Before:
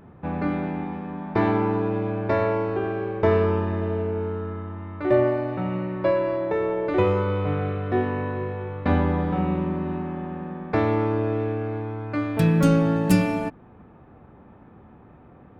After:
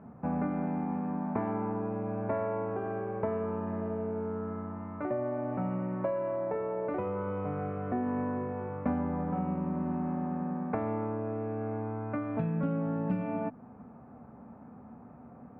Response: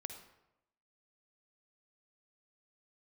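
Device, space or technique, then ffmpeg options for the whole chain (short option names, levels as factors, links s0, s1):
bass amplifier: -af "acompressor=threshold=0.0447:ratio=5,highpass=78,equalizer=f=92:t=q:w=4:g=-6,equalizer=f=240:t=q:w=4:g=9,equalizer=f=340:t=q:w=4:g=-9,equalizer=f=690:t=q:w=4:g=4,equalizer=f=1800:t=q:w=4:g=-6,lowpass=f=2000:w=0.5412,lowpass=f=2000:w=1.3066,volume=0.75"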